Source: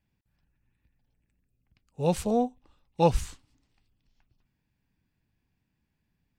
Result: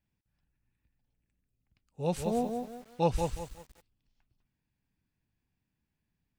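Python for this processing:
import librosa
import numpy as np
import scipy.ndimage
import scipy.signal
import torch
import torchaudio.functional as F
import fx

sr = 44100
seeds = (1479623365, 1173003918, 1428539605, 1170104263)

y = fx.echo_crushed(x, sr, ms=183, feedback_pct=35, bits=8, wet_db=-5)
y = F.gain(torch.from_numpy(y), -5.5).numpy()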